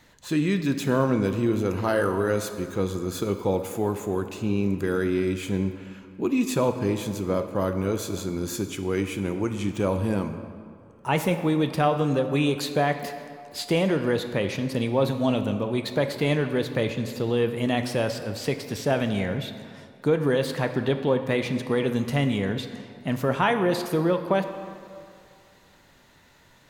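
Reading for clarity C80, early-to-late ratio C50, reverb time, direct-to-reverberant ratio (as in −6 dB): 10.0 dB, 9.0 dB, 2.3 s, 7.5 dB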